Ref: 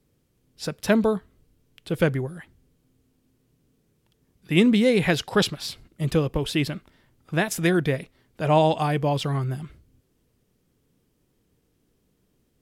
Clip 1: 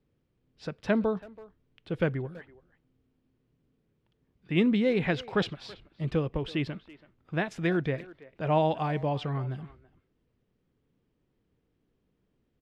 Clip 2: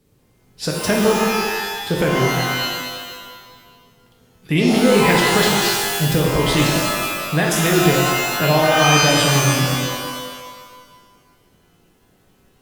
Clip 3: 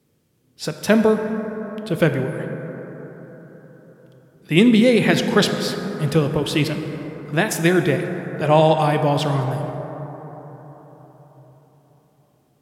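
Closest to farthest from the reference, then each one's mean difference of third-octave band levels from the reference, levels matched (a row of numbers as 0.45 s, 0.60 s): 1, 3, 2; 4.0 dB, 5.5 dB, 13.5 dB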